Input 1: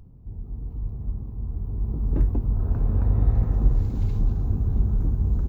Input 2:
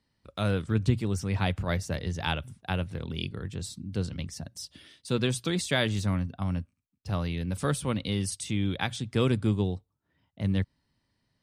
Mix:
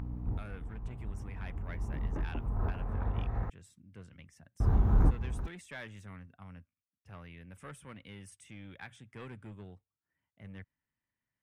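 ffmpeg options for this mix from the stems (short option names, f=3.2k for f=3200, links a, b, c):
-filter_complex "[0:a]equalizer=f=880:t=o:w=1.9:g=9.5,alimiter=limit=-17dB:level=0:latency=1:release=304,aeval=exprs='val(0)+0.0112*(sin(2*PI*60*n/s)+sin(2*PI*2*60*n/s)/2+sin(2*PI*3*60*n/s)/3+sin(2*PI*4*60*n/s)/4+sin(2*PI*5*60*n/s)/5)':c=same,volume=1.5dB,asplit=3[a][b][c];[a]atrim=end=3.5,asetpts=PTS-STARTPTS,afade=t=out:st=3.496:d=0.004:c=hsin[d];[b]atrim=start=3.5:end=4.6,asetpts=PTS-STARTPTS,volume=0[e];[c]atrim=start=4.6,asetpts=PTS-STARTPTS,afade=t=in:d=0.004:c=hsin[f];[d][e][f]concat=n=3:v=0:a=1[g];[1:a]equalizer=f=4.3k:t=o:w=0.58:g=-15,asoftclip=type=tanh:threshold=-22dB,volume=-19dB,asplit=2[h][i];[i]apad=whole_len=241745[j];[g][j]sidechaincompress=threshold=-58dB:ratio=8:attack=5.4:release=668[k];[k][h]amix=inputs=2:normalize=0,equalizer=f=1.9k:t=o:w=1.6:g=11"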